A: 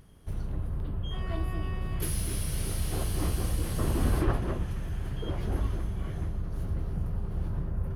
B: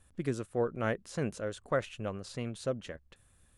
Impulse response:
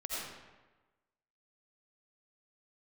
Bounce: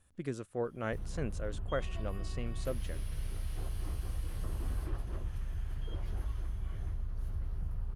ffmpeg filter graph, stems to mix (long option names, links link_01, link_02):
-filter_complex "[0:a]asubboost=boost=3.5:cutoff=95,acrossover=split=830|3600[link_01][link_02][link_03];[link_01]acompressor=threshold=-25dB:ratio=4[link_04];[link_02]acompressor=threshold=-48dB:ratio=4[link_05];[link_03]acompressor=threshold=-50dB:ratio=4[link_06];[link_04][link_05][link_06]amix=inputs=3:normalize=0,adelay=650,volume=-8dB[link_07];[1:a]volume=-4.5dB[link_08];[link_07][link_08]amix=inputs=2:normalize=0"